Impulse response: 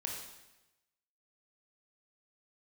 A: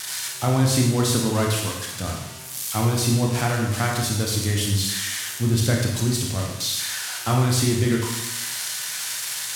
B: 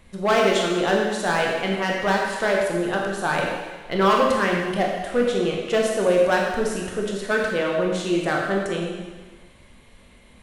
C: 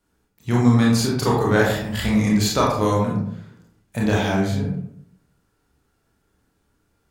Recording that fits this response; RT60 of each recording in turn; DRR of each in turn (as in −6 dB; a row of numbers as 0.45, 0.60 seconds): A; 1.0, 1.4, 0.70 seconds; −1.0, −1.5, −4.0 decibels